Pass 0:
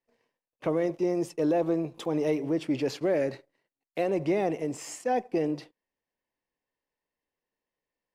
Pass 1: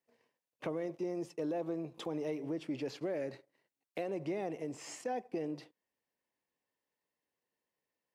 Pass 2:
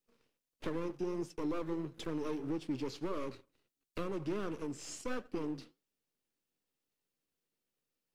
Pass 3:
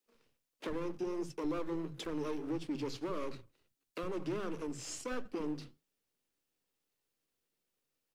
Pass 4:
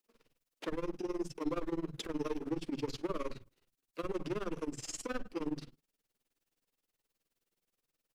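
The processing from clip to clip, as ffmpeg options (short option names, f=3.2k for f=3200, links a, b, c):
-filter_complex "[0:a]acrossover=split=6400[a][b];[b]acompressor=threshold=-53dB:ratio=4:attack=1:release=60[c];[a][c]amix=inputs=2:normalize=0,highpass=88,acompressor=threshold=-41dB:ratio=2,volume=-1dB"
-filter_complex "[0:a]acrossover=split=510|2600[a][b][c];[b]aeval=exprs='abs(val(0))':c=same[d];[a][d][c]amix=inputs=3:normalize=0,flanger=delay=3.5:depth=7.5:regen=-77:speed=1.5:shape=triangular,volume=6.5dB"
-filter_complex "[0:a]asplit=2[a][b];[b]alimiter=level_in=7.5dB:limit=-24dB:level=0:latency=1:release=274,volume=-7.5dB,volume=1dB[c];[a][c]amix=inputs=2:normalize=0,acrossover=split=200[d][e];[d]adelay=60[f];[f][e]amix=inputs=2:normalize=0,volume=-4dB"
-af "tremolo=f=19:d=0.92,volume=4.5dB"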